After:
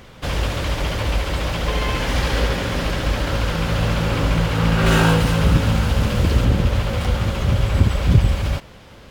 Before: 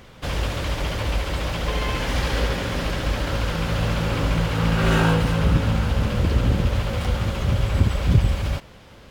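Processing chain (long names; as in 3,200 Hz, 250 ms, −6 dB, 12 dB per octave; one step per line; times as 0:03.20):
0:04.86–0:06.45: high-shelf EQ 4,100 Hz +5.5 dB
level +3 dB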